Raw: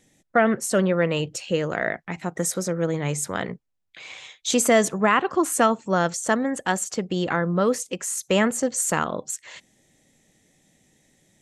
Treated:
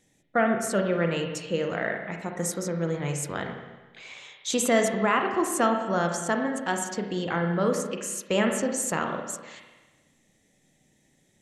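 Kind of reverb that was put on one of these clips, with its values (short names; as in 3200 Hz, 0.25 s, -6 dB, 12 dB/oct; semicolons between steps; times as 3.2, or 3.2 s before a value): spring tank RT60 1.2 s, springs 30/35/49 ms, chirp 25 ms, DRR 3 dB; gain -5 dB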